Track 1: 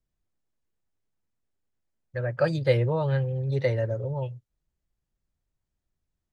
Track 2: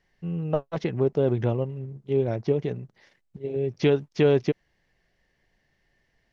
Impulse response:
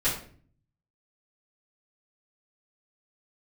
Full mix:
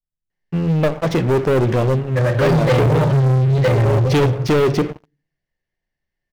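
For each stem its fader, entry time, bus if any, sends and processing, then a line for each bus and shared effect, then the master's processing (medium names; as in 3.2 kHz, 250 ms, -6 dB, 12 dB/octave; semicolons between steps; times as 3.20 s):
-12.0 dB, 0.00 s, send -6 dB, peaking EQ 110 Hz +5 dB 2.6 oct
-5.0 dB, 0.30 s, send -21.5 dB, none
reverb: on, RT60 0.45 s, pre-delay 3 ms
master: waveshaping leveller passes 5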